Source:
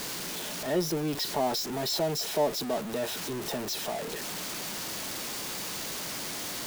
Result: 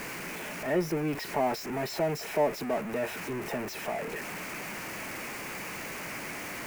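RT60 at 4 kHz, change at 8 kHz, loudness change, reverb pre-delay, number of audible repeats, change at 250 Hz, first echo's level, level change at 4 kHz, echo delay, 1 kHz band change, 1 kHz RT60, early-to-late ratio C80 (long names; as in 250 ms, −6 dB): no reverb audible, −8.0 dB, −2.0 dB, no reverb audible, no echo audible, 0.0 dB, no echo audible, −9.5 dB, no echo audible, +0.5 dB, no reverb audible, no reverb audible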